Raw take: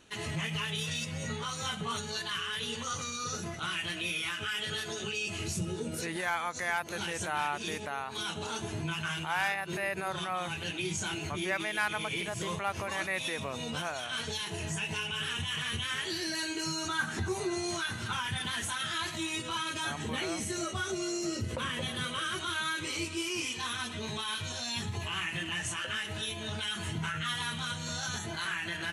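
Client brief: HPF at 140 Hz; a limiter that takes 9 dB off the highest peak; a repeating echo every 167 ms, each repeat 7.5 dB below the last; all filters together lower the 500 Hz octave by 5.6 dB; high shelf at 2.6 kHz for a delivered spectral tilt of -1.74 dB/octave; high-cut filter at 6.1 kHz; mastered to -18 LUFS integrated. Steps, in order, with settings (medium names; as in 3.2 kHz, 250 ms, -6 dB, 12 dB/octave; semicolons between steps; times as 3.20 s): high-pass 140 Hz; low-pass 6.1 kHz; peaking EQ 500 Hz -8.5 dB; treble shelf 2.6 kHz +5.5 dB; peak limiter -25.5 dBFS; feedback delay 167 ms, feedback 42%, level -7.5 dB; trim +15.5 dB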